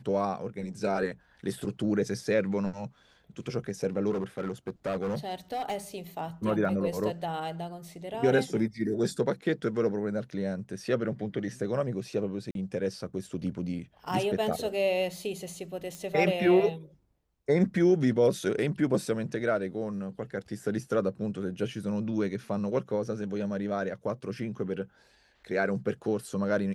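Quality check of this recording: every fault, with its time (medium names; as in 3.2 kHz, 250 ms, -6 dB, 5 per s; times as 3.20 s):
4.10–5.76 s: clipped -27 dBFS
12.51–12.55 s: dropout 42 ms
15.95 s: pop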